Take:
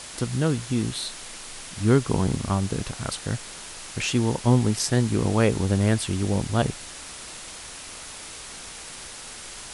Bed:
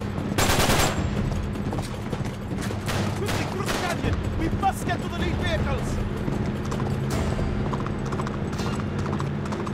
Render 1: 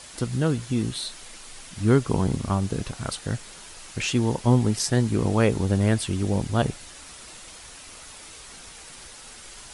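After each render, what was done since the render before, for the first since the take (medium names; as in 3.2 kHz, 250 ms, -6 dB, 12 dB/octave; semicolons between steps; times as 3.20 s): noise reduction 6 dB, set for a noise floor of -40 dBFS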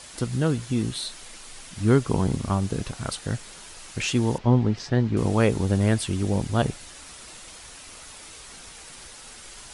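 4.38–5.17 s: distance through air 210 m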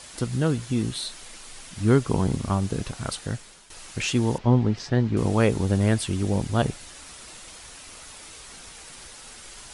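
3.19–3.70 s: fade out linear, to -12 dB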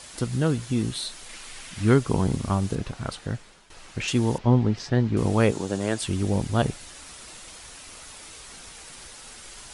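1.29–1.94 s: peaking EQ 2.2 kHz +5.5 dB 1.6 oct; 2.75–4.08 s: low-pass 3 kHz 6 dB/octave; 5.51–6.02 s: cabinet simulation 210–9900 Hz, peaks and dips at 220 Hz -4 dB, 2.1 kHz -4 dB, 7 kHz +5 dB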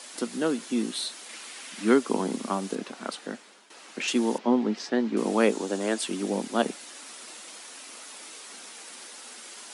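steep high-pass 210 Hz 48 dB/octave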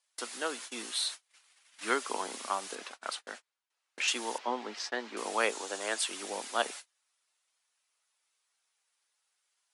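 gate -38 dBFS, range -35 dB; high-pass 820 Hz 12 dB/octave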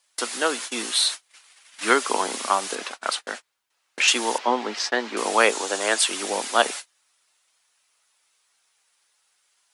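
trim +11.5 dB; peak limiter -3 dBFS, peak gain reduction 1.5 dB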